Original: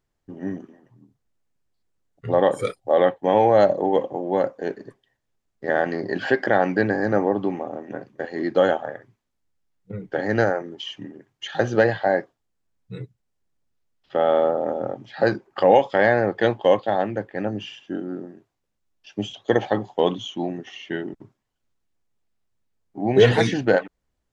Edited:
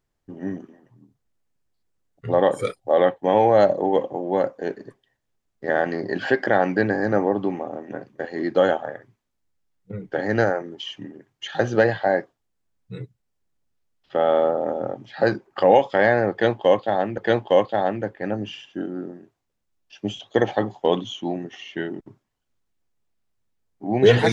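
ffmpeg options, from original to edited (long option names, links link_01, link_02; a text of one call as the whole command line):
ffmpeg -i in.wav -filter_complex "[0:a]asplit=2[link_01][link_02];[link_01]atrim=end=17.182[link_03];[link_02]atrim=start=16.318[link_04];[link_03][link_04]acrossfade=duration=0.004:curve1=hsin:curve2=hsin" out.wav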